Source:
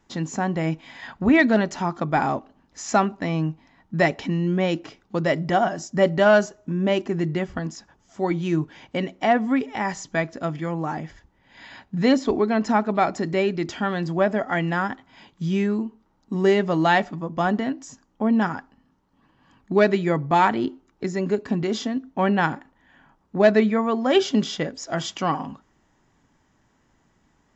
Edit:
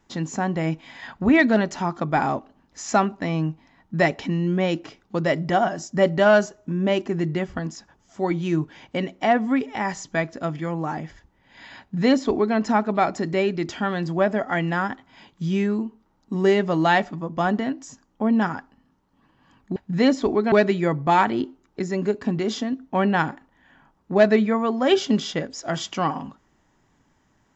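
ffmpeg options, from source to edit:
-filter_complex "[0:a]asplit=3[s0][s1][s2];[s0]atrim=end=19.762[s3];[s1]atrim=start=11.798:end=12.562[s4];[s2]atrim=start=19.758[s5];[s3][s4]acrossfade=d=0.004:c1=hsin:c2=hsin[s6];[s6][s5]acrossfade=d=0.004:c1=hsin:c2=hsin"

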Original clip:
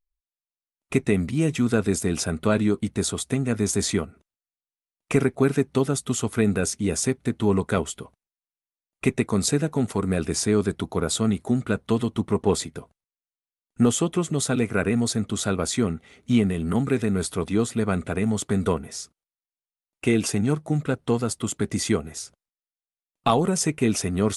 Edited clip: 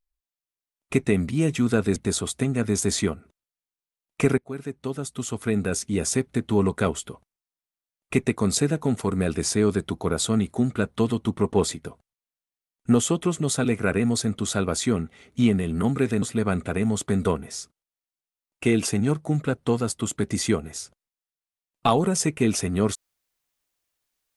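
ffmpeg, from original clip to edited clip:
-filter_complex "[0:a]asplit=4[s0][s1][s2][s3];[s0]atrim=end=1.962[s4];[s1]atrim=start=2.868:end=5.29,asetpts=PTS-STARTPTS,afade=t=out:st=2.418:d=0.004:c=hsin:silence=0.133352[s5];[s2]atrim=start=5.29:end=17.132,asetpts=PTS-STARTPTS,afade=t=in:d=1.71:silence=0.133352[s6];[s3]atrim=start=17.628[s7];[s5][s6]concat=n=2:v=0:a=1[s8];[s4][s8]acrossfade=d=0.004:c1=hsin:c2=hsin[s9];[s9][s7]acrossfade=d=0.004:c1=hsin:c2=hsin"

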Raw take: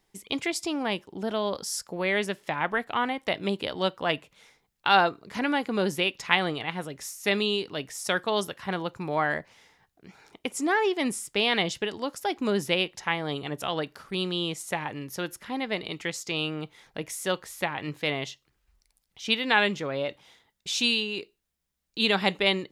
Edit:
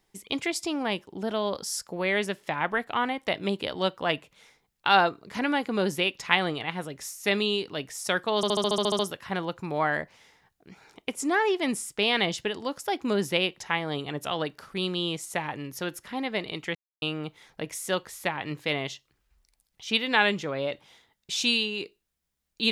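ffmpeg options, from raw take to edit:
-filter_complex "[0:a]asplit=12[s0][s1][s2][s3][s4][s5][s6][s7][s8][s9][s10][s11];[s0]atrim=end=8.432[s12];[s1]atrim=start=8.358:end=8.432[s13];[s2]atrim=start=8.358:end=8.432[s14];[s3]atrim=start=8.358:end=8.432[s15];[s4]atrim=start=8.358:end=8.432[s16];[s5]atrim=start=8.358:end=8.432[s17];[s6]atrim=start=8.358:end=8.432[s18];[s7]atrim=start=8.358:end=8.432[s19];[s8]atrim=start=8.358:end=8.432[s20];[s9]atrim=start=8.358:end=16.12,asetpts=PTS-STARTPTS,afade=t=out:st=7.758:d=0.004:c=hsin[s21];[s10]atrim=start=16.12:end=16.39,asetpts=PTS-STARTPTS,volume=0[s22];[s11]atrim=start=16.39,asetpts=PTS-STARTPTS,afade=t=in:d=0.004:c=hsin[s23];[s12][s13]acrossfade=d=0.004:c1=hsin:c2=hsin[s24];[s24][s14]acrossfade=d=0.004:c1=hsin:c2=hsin[s25];[s25][s15]acrossfade=d=0.004:c1=hsin:c2=hsin[s26];[s26][s16]acrossfade=d=0.004:c1=hsin:c2=hsin[s27];[s27][s17]acrossfade=d=0.004:c1=hsin:c2=hsin[s28];[s28][s18]acrossfade=d=0.004:c1=hsin:c2=hsin[s29];[s29][s19]acrossfade=d=0.004:c1=hsin:c2=hsin[s30];[s30][s20]acrossfade=d=0.004:c1=hsin:c2=hsin[s31];[s21][s22][s23]concat=n=3:v=0:a=1[s32];[s31][s32]acrossfade=d=0.004:c1=hsin:c2=hsin"

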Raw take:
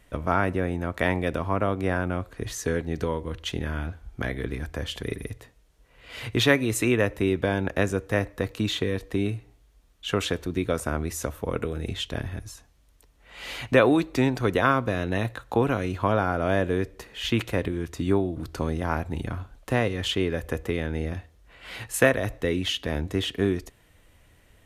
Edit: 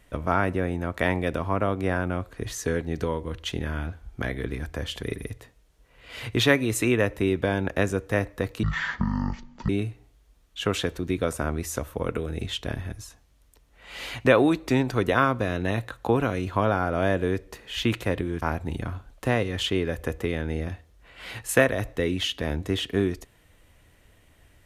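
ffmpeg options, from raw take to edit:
-filter_complex "[0:a]asplit=4[s0][s1][s2][s3];[s0]atrim=end=8.634[s4];[s1]atrim=start=8.63:end=9.16,asetpts=PTS-STARTPTS,asetrate=22050,aresample=44100[s5];[s2]atrim=start=9.156:end=17.892[s6];[s3]atrim=start=18.868[s7];[s4][s5]acrossfade=d=0.004:c1=hsin:c2=hsin[s8];[s8][s6]acrossfade=d=0.004:c1=hsin:c2=hsin[s9];[s9][s7]acrossfade=d=0.004:c1=hsin:c2=hsin"

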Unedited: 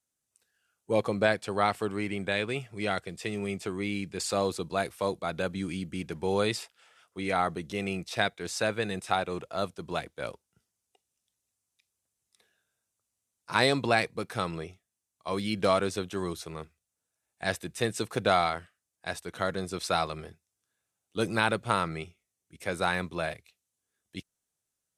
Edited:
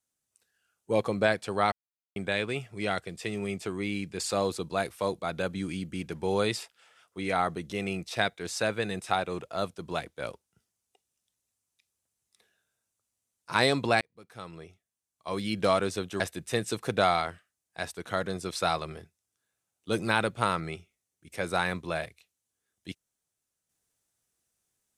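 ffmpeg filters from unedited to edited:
-filter_complex "[0:a]asplit=5[s0][s1][s2][s3][s4];[s0]atrim=end=1.72,asetpts=PTS-STARTPTS,afade=t=out:st=1.716:d=0.004:c=hsin[s5];[s1]atrim=start=1.72:end=2.16,asetpts=PTS-STARTPTS,volume=0[s6];[s2]atrim=start=2.16:end=14.01,asetpts=PTS-STARTPTS,afade=t=in:d=0.004:c=hsin,afade=t=out:st=11.846:d=0.004:c=hsin[s7];[s3]atrim=start=14.01:end=16.202,asetpts=PTS-STARTPTS,afade=t=in:d=1.55[s8];[s4]atrim=start=17.478[s9];[s5][s6][s7][s8]concat=n=4:v=0:a=1[s10];[s10][s9]acrossfade=d=0.004:c1=hsin:c2=hsin"

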